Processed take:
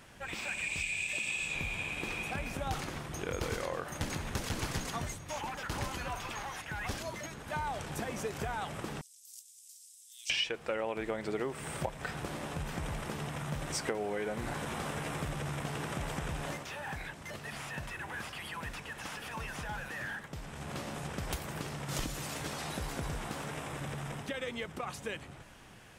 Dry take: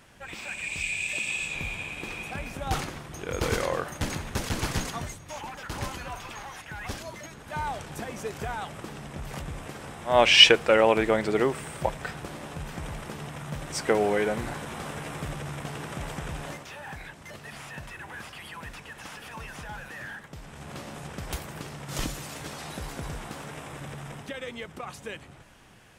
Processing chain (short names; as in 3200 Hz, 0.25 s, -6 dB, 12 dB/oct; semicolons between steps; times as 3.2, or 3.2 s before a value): 9.01–10.3 inverse Chebyshev high-pass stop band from 1000 Hz, stop band 80 dB; compressor 6:1, threshold -32 dBFS, peak gain reduction 21.5 dB